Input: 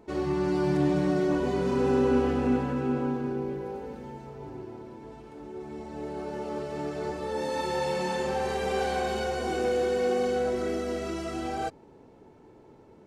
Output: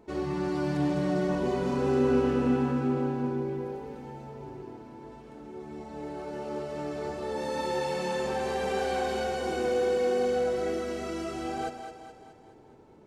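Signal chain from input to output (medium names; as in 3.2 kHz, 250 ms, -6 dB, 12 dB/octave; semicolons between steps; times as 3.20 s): two-band feedback delay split 410 Hz, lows 114 ms, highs 211 ms, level -8 dB; trim -2 dB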